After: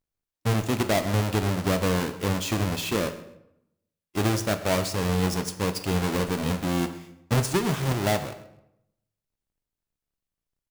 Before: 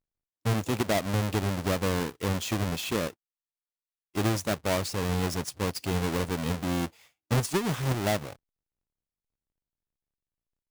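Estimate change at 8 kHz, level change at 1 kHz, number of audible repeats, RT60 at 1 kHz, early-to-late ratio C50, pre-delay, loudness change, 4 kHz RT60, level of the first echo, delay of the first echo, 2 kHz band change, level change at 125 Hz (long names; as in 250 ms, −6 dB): +3.0 dB, +3.0 dB, 2, 0.75 s, 11.5 dB, 15 ms, +3.0 dB, 0.55 s, −18.0 dB, 131 ms, +3.0 dB, +3.0 dB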